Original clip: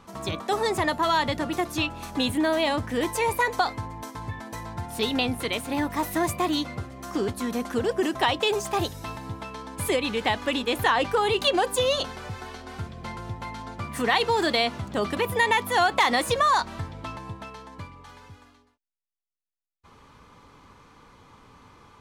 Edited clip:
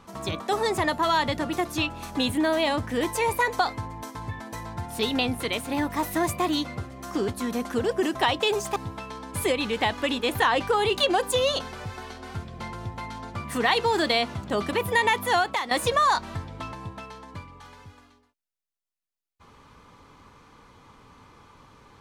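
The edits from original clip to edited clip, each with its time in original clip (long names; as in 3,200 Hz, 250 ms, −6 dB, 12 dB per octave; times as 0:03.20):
0:08.76–0:09.20: remove
0:15.75–0:16.15: fade out, to −14.5 dB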